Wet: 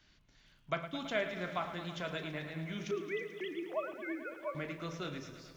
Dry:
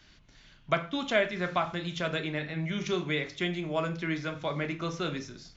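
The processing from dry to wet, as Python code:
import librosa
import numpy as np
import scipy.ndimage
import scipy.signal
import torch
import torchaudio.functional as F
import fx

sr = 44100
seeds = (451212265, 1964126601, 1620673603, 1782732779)

y = fx.sine_speech(x, sr, at=(2.91, 4.55))
y = fx.echo_crushed(y, sr, ms=109, feedback_pct=80, bits=9, wet_db=-12)
y = y * 10.0 ** (-8.5 / 20.0)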